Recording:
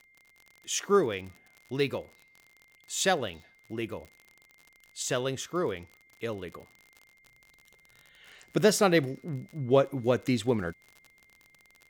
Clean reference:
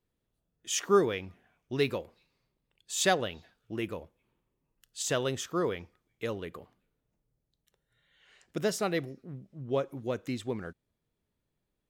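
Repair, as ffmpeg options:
ffmpeg -i in.wav -af "adeclick=threshold=4,bandreject=frequency=2100:width=30,asetnsamples=nb_out_samples=441:pad=0,asendcmd='7.23 volume volume -7.5dB',volume=0dB" out.wav

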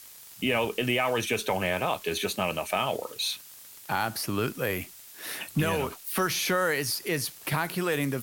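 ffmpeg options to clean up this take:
ffmpeg -i in.wav -af "adeclick=threshold=4,afftdn=noise_reduction=27:noise_floor=-48" out.wav

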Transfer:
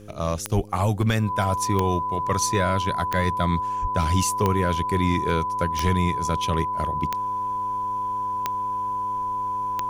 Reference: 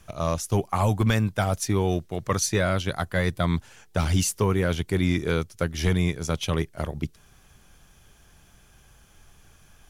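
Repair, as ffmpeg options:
ffmpeg -i in.wav -filter_complex "[0:a]adeclick=threshold=4,bandreject=frequency=104.2:width_type=h:width=4,bandreject=frequency=208.4:width_type=h:width=4,bandreject=frequency=312.6:width_type=h:width=4,bandreject=frequency=416.8:width_type=h:width=4,bandreject=frequency=521:width_type=h:width=4,bandreject=frequency=1000:width=30,asplit=3[link_01][link_02][link_03];[link_01]afade=type=out:start_time=0.55:duration=0.02[link_04];[link_02]highpass=frequency=140:width=0.5412,highpass=frequency=140:width=1.3066,afade=type=in:start_time=0.55:duration=0.02,afade=type=out:start_time=0.67:duration=0.02[link_05];[link_03]afade=type=in:start_time=0.67:duration=0.02[link_06];[link_04][link_05][link_06]amix=inputs=3:normalize=0,asplit=3[link_07][link_08][link_09];[link_07]afade=type=out:start_time=3.81:duration=0.02[link_10];[link_08]highpass=frequency=140:width=0.5412,highpass=frequency=140:width=1.3066,afade=type=in:start_time=3.81:duration=0.02,afade=type=out:start_time=3.93:duration=0.02[link_11];[link_09]afade=type=in:start_time=3.93:duration=0.02[link_12];[link_10][link_11][link_12]amix=inputs=3:normalize=0" out.wav

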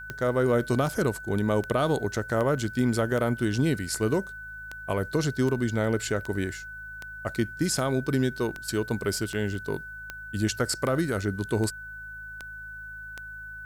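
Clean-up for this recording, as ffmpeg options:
ffmpeg -i in.wav -af "adeclick=threshold=4,bandreject=frequency=53.5:width_type=h:width=4,bandreject=frequency=107:width_type=h:width=4,bandreject=frequency=160.5:width_type=h:width=4,bandreject=frequency=1500:width=30,agate=range=-21dB:threshold=-33dB" out.wav

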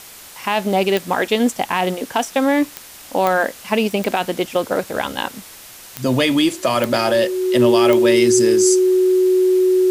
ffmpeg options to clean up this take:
ffmpeg -i in.wav -af "adeclick=threshold=4,bandreject=frequency=370:width=30,afwtdn=0.013" out.wav

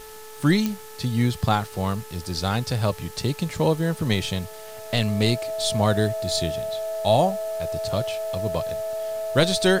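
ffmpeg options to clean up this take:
ffmpeg -i in.wav -af "adeclick=threshold=4,bandreject=frequency=434.5:width_type=h:width=4,bandreject=frequency=869:width_type=h:width=4,bandreject=frequency=1303.5:width_type=h:width=4,bandreject=frequency=1738:width_type=h:width=4,bandreject=frequency=650:width=30,afwtdn=0.0056" out.wav

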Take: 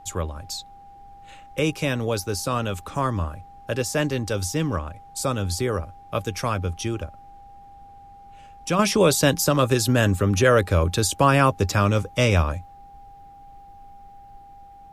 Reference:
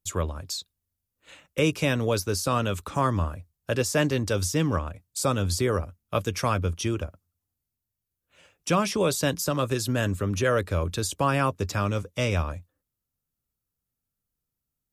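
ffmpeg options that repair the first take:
ffmpeg -i in.wav -af "bandreject=frequency=800:width=30,agate=range=-21dB:threshold=-38dB,asetnsamples=nb_out_samples=441:pad=0,asendcmd='8.79 volume volume -6.5dB',volume=0dB" out.wav

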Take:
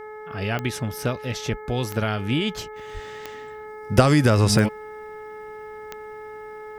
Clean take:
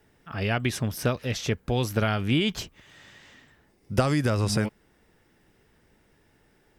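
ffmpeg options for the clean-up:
ffmpeg -i in.wav -filter_complex "[0:a]adeclick=threshold=4,bandreject=frequency=428.1:width_type=h:width=4,bandreject=frequency=856.2:width_type=h:width=4,bandreject=frequency=1284.3:width_type=h:width=4,bandreject=frequency=1712.4:width_type=h:width=4,bandreject=frequency=2140.5:width_type=h:width=4,asplit=3[link_01][link_02][link_03];[link_01]afade=type=out:start_time=1.5:duration=0.02[link_04];[link_02]highpass=frequency=140:width=0.5412,highpass=frequency=140:width=1.3066,afade=type=in:start_time=1.5:duration=0.02,afade=type=out:start_time=1.62:duration=0.02[link_05];[link_03]afade=type=in:start_time=1.62:duration=0.02[link_06];[link_04][link_05][link_06]amix=inputs=3:normalize=0,asplit=3[link_07][link_08][link_09];[link_07]afade=type=out:start_time=2.93:duration=0.02[link_10];[link_08]highpass=frequency=140:width=0.5412,highpass=frequency=140:width=1.3066,afade=type=in:start_time=2.93:duration=0.02,afade=type=out:start_time=3.05:duration=0.02[link_11];[link_09]afade=type=in:start_time=3.05:duration=0.02[link_12];[link_10][link_11][link_12]amix=inputs=3:normalize=0,asetnsamples=nb_out_samples=441:pad=0,asendcmd='2.76 volume volume -7dB',volume=0dB" out.wav

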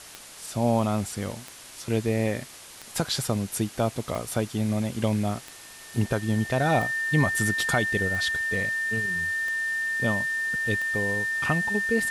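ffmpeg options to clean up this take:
ffmpeg -i in.wav -af "adeclick=threshold=4,bandreject=frequency=1800:width=30,afwtdn=0.0071" out.wav

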